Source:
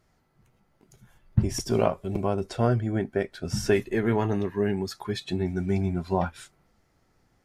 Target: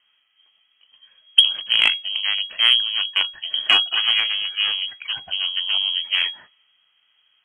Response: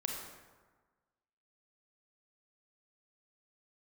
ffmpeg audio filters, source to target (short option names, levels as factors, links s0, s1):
-af "aeval=exprs='0.447*(cos(1*acos(clip(val(0)/0.447,-1,1)))-cos(1*PI/2))+0.0794*(cos(3*acos(clip(val(0)/0.447,-1,1)))-cos(3*PI/2))+0.112*(cos(4*acos(clip(val(0)/0.447,-1,1)))-cos(4*PI/2))':c=same,lowpass=f=2800:t=q:w=0.5098,lowpass=f=2800:t=q:w=0.6013,lowpass=f=2800:t=q:w=0.9,lowpass=f=2800:t=q:w=2.563,afreqshift=-3300,acontrast=77,volume=1.33"